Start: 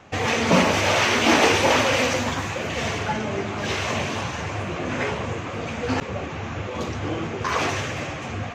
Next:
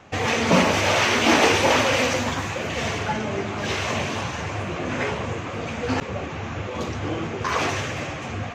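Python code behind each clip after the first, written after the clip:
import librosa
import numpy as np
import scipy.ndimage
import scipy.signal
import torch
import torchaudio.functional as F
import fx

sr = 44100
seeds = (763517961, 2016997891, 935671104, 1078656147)

y = x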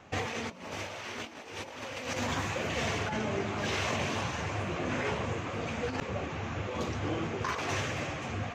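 y = fx.over_compress(x, sr, threshold_db=-25.0, ratio=-0.5)
y = y * librosa.db_to_amplitude(-8.0)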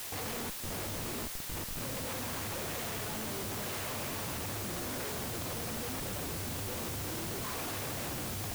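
y = fx.schmitt(x, sr, flips_db=-36.5)
y = fx.quant_dither(y, sr, seeds[0], bits=6, dither='triangular')
y = y * librosa.db_to_amplitude(-5.5)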